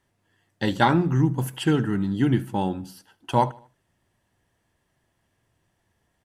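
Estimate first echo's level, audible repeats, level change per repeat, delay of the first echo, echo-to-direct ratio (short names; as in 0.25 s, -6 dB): -23.0 dB, 2, -6.5 dB, 77 ms, -22.0 dB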